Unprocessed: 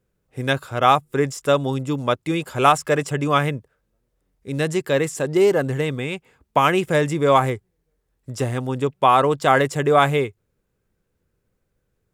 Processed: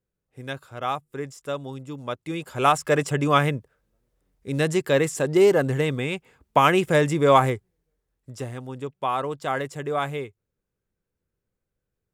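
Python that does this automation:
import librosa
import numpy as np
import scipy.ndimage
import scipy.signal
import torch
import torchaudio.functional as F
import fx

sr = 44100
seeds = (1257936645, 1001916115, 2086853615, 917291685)

y = fx.gain(x, sr, db=fx.line((1.92, -12.0), (3.0, -0.5), (7.45, -0.5), (8.58, -10.5)))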